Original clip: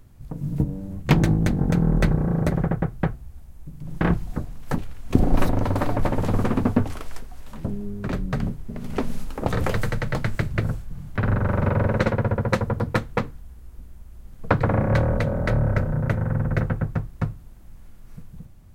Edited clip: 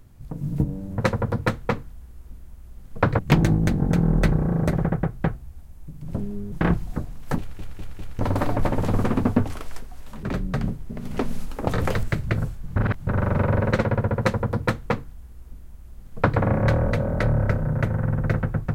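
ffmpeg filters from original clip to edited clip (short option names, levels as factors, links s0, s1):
-filter_complex "[0:a]asplit=13[s0][s1][s2][s3][s4][s5][s6][s7][s8][s9][s10][s11][s12];[s0]atrim=end=0.982[s13];[s1]atrim=start=12.458:end=14.672[s14];[s2]atrim=start=0.978:end=3.922[s15];[s3]atrim=start=7.628:end=8.022[s16];[s4]atrim=start=3.918:end=4.992[s17];[s5]atrim=start=4.788:end=4.992[s18];[s6]atrim=start=4.788:end=4.992[s19];[s7]atrim=start=4.788:end=4.992[s20];[s8]atrim=start=5.588:end=7.632[s21];[s9]atrim=start=8.018:end=9.822[s22];[s10]atrim=start=10.298:end=11.032[s23];[s11]atrim=start=11.028:end=11.342,asetpts=PTS-STARTPTS,areverse[s24];[s12]atrim=start=11.338[s25];[s13][s14]acrossfade=d=0.004:c1=hsin:c2=hsin[s26];[s26][s15]acrossfade=d=0.004:c1=hsin:c2=hsin[s27];[s27][s16]acrossfade=d=0.004:c1=hsin:c2=hsin[s28];[s28][s17]acrossfade=d=0.004:c1=hsin:c2=hsin[s29];[s29][s18]acrossfade=d=0.004:c1=hsin:c2=hsin[s30];[s30][s19]acrossfade=d=0.004:c1=hsin:c2=hsin[s31];[s31][s20]acrossfade=d=0.004:c1=hsin:c2=hsin[s32];[s32][s21]acrossfade=d=0.004:c1=hsin:c2=hsin[s33];[s33][s22]acrossfade=d=0.004:c1=hsin:c2=hsin[s34];[s34][s23]acrossfade=d=0.004:c1=hsin:c2=hsin[s35];[s35][s24]acrossfade=d=0.004:c1=hsin:c2=hsin[s36];[s36][s25]acrossfade=d=0.004:c1=hsin:c2=hsin"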